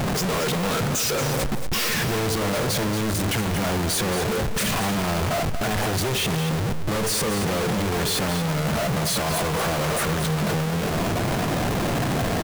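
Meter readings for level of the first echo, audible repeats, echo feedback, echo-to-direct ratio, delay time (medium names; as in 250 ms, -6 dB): -9.5 dB, 1, no regular repeats, -9.5 dB, 230 ms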